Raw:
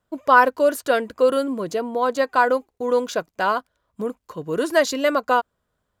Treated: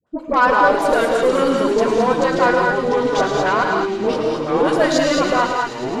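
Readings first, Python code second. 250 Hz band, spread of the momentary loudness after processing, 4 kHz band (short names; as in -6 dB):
+7.0 dB, 5 LU, +6.0 dB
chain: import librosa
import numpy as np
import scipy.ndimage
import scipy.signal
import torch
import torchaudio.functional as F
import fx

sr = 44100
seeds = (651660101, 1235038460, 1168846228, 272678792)

p1 = fx.highpass(x, sr, hz=230.0, slope=6)
p2 = fx.over_compress(p1, sr, threshold_db=-23.0, ratio=-1.0)
p3 = p1 + (p2 * 10.0 ** (0.5 / 20.0))
p4 = fx.dispersion(p3, sr, late='highs', ms=68.0, hz=690.0)
p5 = fx.cheby_harmonics(p4, sr, harmonics=(6,), levels_db=(-24,), full_scale_db=-1.5)
p6 = fx.echo_pitch(p5, sr, ms=119, semitones=-4, count=3, db_per_echo=-6.0)
p7 = fx.air_absorb(p6, sr, metres=77.0)
p8 = p7 + fx.echo_wet_highpass(p7, sr, ms=108, feedback_pct=84, hz=2400.0, wet_db=-9.5, dry=0)
p9 = fx.rev_gated(p8, sr, seeds[0], gate_ms=240, shape='rising', drr_db=1.5)
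y = p9 * 10.0 ** (-2.5 / 20.0)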